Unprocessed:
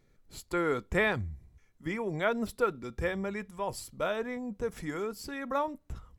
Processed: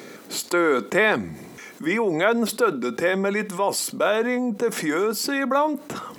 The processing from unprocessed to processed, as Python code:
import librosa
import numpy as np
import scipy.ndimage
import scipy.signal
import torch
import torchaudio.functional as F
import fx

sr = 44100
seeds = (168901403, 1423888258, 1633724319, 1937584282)

y = scipy.signal.sosfilt(scipy.signal.butter(4, 220.0, 'highpass', fs=sr, output='sos'), x)
y = fx.env_flatten(y, sr, amount_pct=50)
y = F.gain(torch.from_numpy(y), 7.0).numpy()